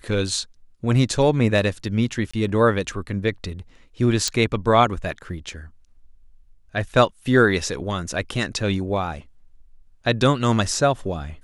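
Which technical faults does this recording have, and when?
2.31–2.33 gap 25 ms
4.28 pop -9 dBFS

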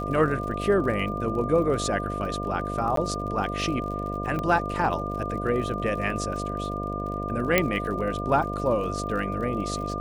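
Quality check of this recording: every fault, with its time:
buzz 50 Hz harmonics 14 -32 dBFS
crackle 44/s -35 dBFS
tone 1200 Hz -32 dBFS
2.96–2.97 gap 13 ms
4.39 pop -18 dBFS
7.58 pop -5 dBFS

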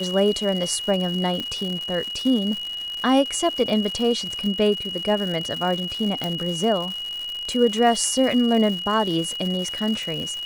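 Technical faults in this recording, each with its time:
crackle 190/s -28 dBFS
tone 2900 Hz -28 dBFS
1.4 pop -15 dBFS
6.24 pop

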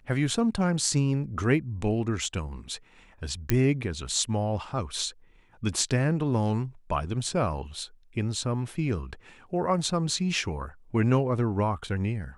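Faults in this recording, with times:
3.5 pop -8 dBFS

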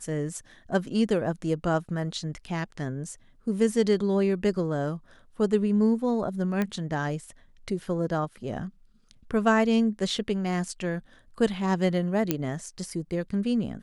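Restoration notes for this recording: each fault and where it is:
6.62 pop -15 dBFS
12.31 pop -9 dBFS

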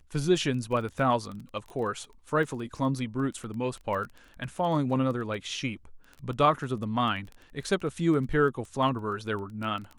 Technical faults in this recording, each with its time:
crackle 13/s -34 dBFS

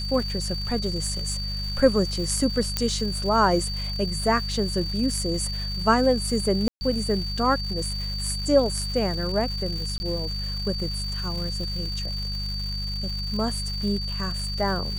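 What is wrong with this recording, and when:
crackle 370/s -33 dBFS
hum 50 Hz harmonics 4 -31 dBFS
tone 4600 Hz -31 dBFS
2.77 pop -8 dBFS
6.68–6.81 gap 0.13 s
9.98–10 gap 20 ms

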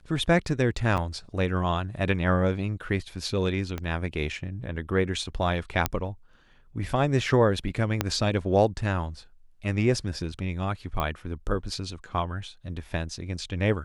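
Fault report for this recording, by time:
0.97–0.98 gap 7.9 ms
3.78 pop -18 dBFS
5.86 pop -7 dBFS
8.01 pop -8 dBFS
11 pop -15 dBFS

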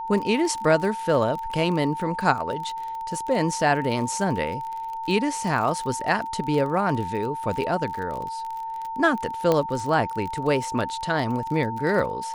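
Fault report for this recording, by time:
crackle 37/s -30 dBFS
tone 900 Hz -29 dBFS
9.52 pop -9 dBFS

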